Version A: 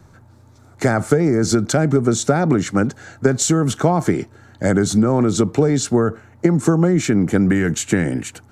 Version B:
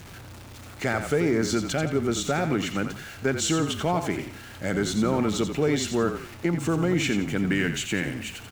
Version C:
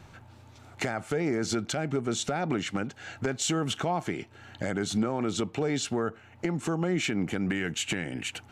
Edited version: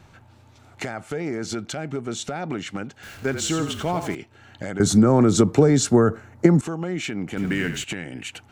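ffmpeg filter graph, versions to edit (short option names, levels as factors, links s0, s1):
-filter_complex "[1:a]asplit=2[s0][s1];[2:a]asplit=4[s2][s3][s4][s5];[s2]atrim=end=3.032[s6];[s0]atrim=start=3.028:end=4.152[s7];[s3]atrim=start=4.148:end=4.802[s8];[0:a]atrim=start=4.798:end=6.612[s9];[s4]atrim=start=6.608:end=7.372[s10];[s1]atrim=start=7.368:end=7.842[s11];[s5]atrim=start=7.838[s12];[s6][s7]acrossfade=d=0.004:c1=hsin:c2=hsin[s13];[s13][s8]acrossfade=d=0.004:c1=hsin:c2=hsin[s14];[s14][s9]acrossfade=d=0.004:c1=hsin:c2=hsin[s15];[s15][s10]acrossfade=d=0.004:c1=hsin:c2=hsin[s16];[s16][s11]acrossfade=d=0.004:c1=hsin:c2=hsin[s17];[s17][s12]acrossfade=d=0.004:c1=hsin:c2=hsin"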